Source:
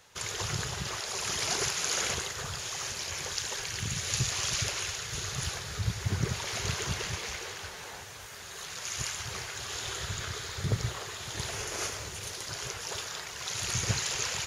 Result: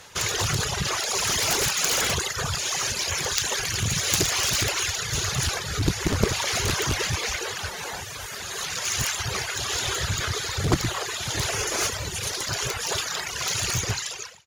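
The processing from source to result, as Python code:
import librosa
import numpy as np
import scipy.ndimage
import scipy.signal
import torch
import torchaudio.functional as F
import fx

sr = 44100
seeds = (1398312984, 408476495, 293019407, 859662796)

y = fx.fade_out_tail(x, sr, length_s=1.04)
y = fx.dereverb_blind(y, sr, rt60_s=0.92)
y = fx.cheby_harmonics(y, sr, harmonics=(7,), levels_db=(-8,), full_scale_db=-13.0)
y = y * 10.0 ** (7.5 / 20.0)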